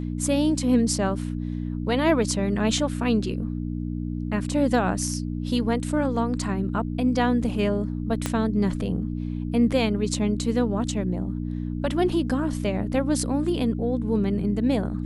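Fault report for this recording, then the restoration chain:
mains hum 60 Hz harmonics 5 −29 dBFS
0:08.26: click −10 dBFS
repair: click removal
hum removal 60 Hz, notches 5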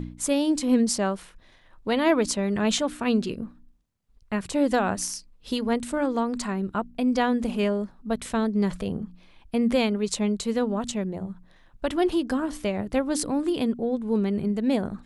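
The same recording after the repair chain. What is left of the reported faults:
0:08.26: click

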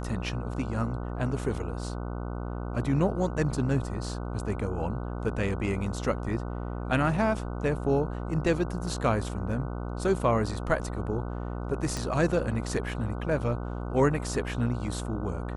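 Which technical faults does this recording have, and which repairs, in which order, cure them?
mains buzz 60 Hz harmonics 25 −34 dBFS
0:11.97: click −19 dBFS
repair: click removal
hum removal 60 Hz, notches 25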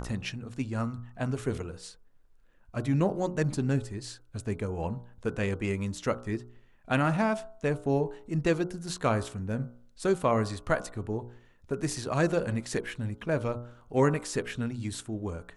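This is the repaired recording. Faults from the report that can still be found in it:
0:11.97: click

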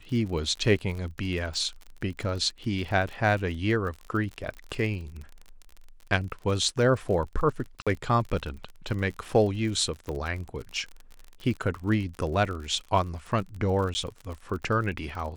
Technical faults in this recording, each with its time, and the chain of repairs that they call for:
surface crackle 41 per second −34 dBFS
0:07.82–0:07.87: drop-out 46 ms
0:10.09: click −21 dBFS
0:13.94–0:13.95: drop-out 10 ms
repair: click removal
repair the gap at 0:07.82, 46 ms
repair the gap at 0:13.94, 10 ms

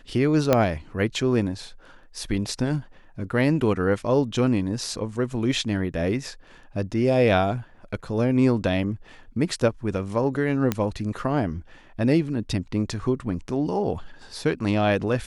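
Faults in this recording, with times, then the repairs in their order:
0:00.53: click −5 dBFS
0:10.72: click −9 dBFS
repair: click removal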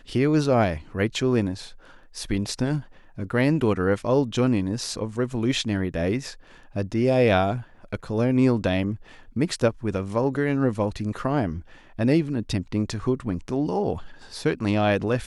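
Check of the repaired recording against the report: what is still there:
0:00.53: click

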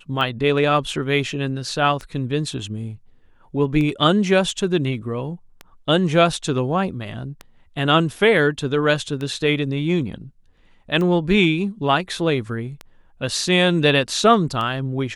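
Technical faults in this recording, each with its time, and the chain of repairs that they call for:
scratch tick 33 1/3 rpm −16 dBFS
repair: click removal

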